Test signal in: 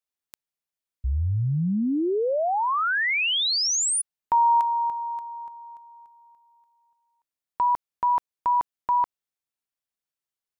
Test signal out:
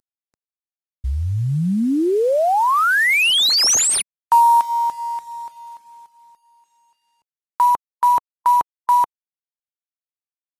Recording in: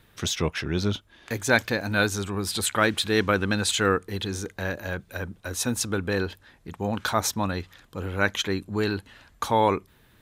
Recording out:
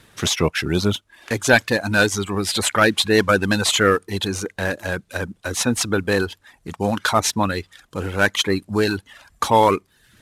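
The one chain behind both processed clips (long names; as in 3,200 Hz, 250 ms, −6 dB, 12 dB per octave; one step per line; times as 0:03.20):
variable-slope delta modulation 64 kbit/s
reverb reduction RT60 0.57 s
low-shelf EQ 71 Hz −8.5 dB
level +8 dB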